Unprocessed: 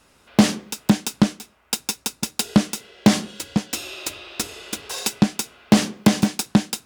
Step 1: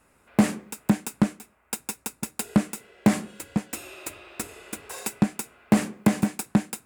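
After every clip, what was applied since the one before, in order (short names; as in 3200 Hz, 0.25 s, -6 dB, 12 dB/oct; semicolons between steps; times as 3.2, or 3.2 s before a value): band shelf 4300 Hz -10 dB 1.3 oct; gain -4.5 dB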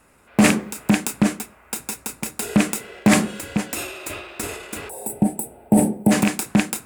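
rattling part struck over -29 dBFS, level -17 dBFS; transient shaper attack -4 dB, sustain +8 dB; spectral gain 4.89–6.11, 940–7700 Hz -20 dB; gain +6 dB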